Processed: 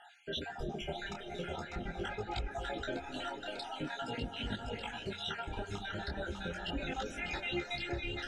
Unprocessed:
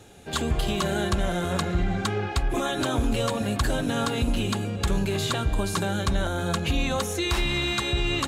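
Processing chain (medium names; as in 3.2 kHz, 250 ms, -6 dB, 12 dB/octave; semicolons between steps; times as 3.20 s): random holes in the spectrogram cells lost 63%; Bessel low-pass 2.7 kHz, order 2; two-band feedback delay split 370 Hz, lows 212 ms, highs 597 ms, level -6.5 dB; reverb removal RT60 0.71 s; reverse; upward compressor, threshold -41 dBFS; reverse; bass shelf 280 Hz -9 dB; on a send at -14 dB: reverberation RT60 1.6 s, pre-delay 229 ms; on the sum: compression, threshold -34 dBFS, peak gain reduction 8 dB; Butterworth band-stop 1.1 kHz, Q 3.2; de-hum 91.84 Hz, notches 33; detune thickener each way 15 cents; trim +4 dB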